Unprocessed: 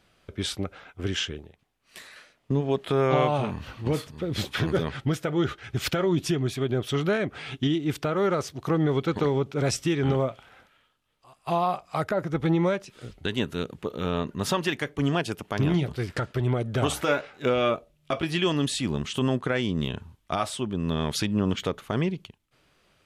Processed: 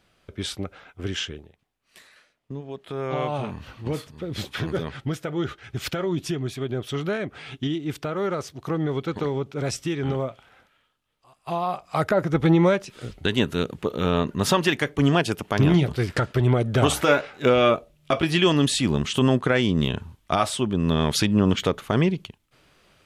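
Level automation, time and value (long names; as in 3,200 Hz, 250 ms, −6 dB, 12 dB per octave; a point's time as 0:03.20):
0:01.27 −0.5 dB
0:02.71 −11 dB
0:03.39 −2 dB
0:11.61 −2 dB
0:12.07 +5.5 dB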